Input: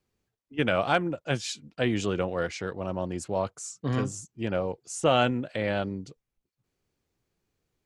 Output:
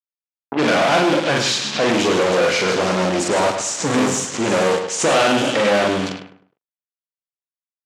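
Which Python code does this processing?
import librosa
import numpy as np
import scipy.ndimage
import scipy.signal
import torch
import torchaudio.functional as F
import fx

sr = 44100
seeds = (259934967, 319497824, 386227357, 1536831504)

y = fx.doubler(x, sr, ms=43.0, db=-3.0)
y = fx.echo_wet_highpass(y, sr, ms=160, feedback_pct=70, hz=3900.0, wet_db=-7.5)
y = fx.fuzz(y, sr, gain_db=40.0, gate_db=-43.0)
y = fx.high_shelf(y, sr, hz=4900.0, db=4.0, at=(2.68, 4.95))
y = fx.cheby_harmonics(y, sr, harmonics=(3, 5, 7, 8), levels_db=(-17, -20, -29, -21), full_scale_db=-7.5)
y = fx.echo_feedback(y, sr, ms=103, feedback_pct=33, wet_db=-7.0)
y = fx.env_lowpass(y, sr, base_hz=1100.0, full_db=-11.5)
y = scipy.signal.sosfilt(scipy.signal.butter(2, 220.0, 'highpass', fs=sr, output='sos'), y)
y = fx.air_absorb(y, sr, metres=71.0)
y = fx.pre_swell(y, sr, db_per_s=130.0)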